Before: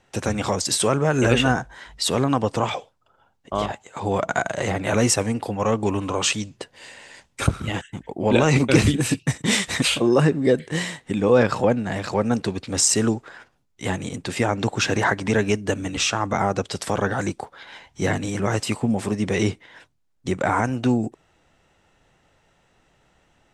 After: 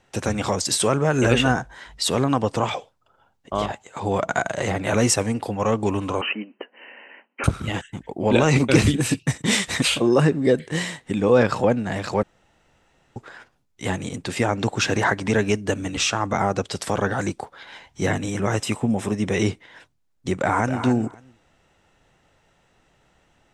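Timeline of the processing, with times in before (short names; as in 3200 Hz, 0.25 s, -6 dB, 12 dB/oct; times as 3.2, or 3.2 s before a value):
6.21–7.44 brick-wall FIR band-pass 200–3100 Hz
12.23–13.16 room tone
18.06–19.45 Butterworth band-stop 4500 Hz, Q 6.6
20.36–20.83 echo throw 0.27 s, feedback 15%, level -9.5 dB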